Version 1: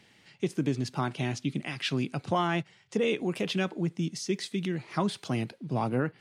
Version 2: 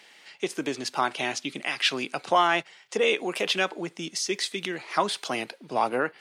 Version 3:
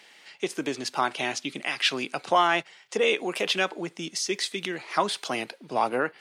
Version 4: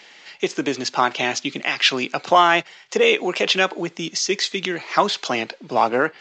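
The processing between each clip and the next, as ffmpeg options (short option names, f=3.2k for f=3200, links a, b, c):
-af "highpass=540,volume=8.5dB"
-af anull
-af "volume=7dB" -ar 16000 -c:a pcm_alaw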